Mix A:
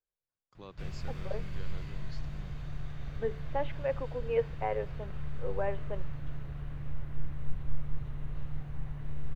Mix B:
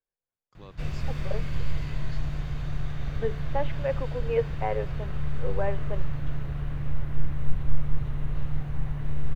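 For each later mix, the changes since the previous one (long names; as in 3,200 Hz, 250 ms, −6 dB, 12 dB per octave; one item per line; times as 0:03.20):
second voice +3.5 dB
background +8.5 dB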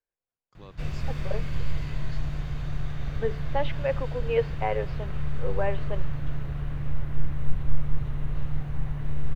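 second voice: remove high-frequency loss of the air 390 metres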